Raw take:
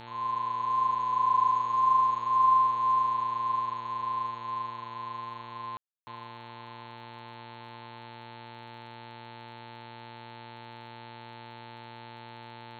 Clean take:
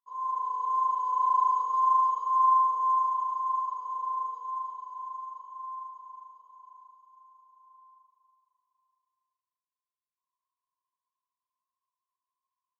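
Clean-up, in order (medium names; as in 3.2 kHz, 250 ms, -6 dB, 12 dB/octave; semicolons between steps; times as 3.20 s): de-click; de-hum 117 Hz, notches 37; band-stop 880 Hz, Q 30; room tone fill 5.77–6.07 s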